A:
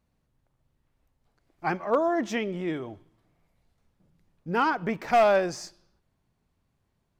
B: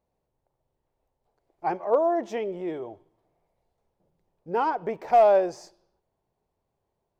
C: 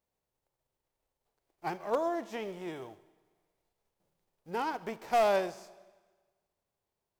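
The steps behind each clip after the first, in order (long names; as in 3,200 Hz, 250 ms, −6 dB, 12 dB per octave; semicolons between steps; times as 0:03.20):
flat-topped bell 590 Hz +11.5 dB; level −8.5 dB
spectral envelope flattened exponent 0.6; four-comb reverb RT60 1.4 s, combs from 28 ms, DRR 17.5 dB; level −8.5 dB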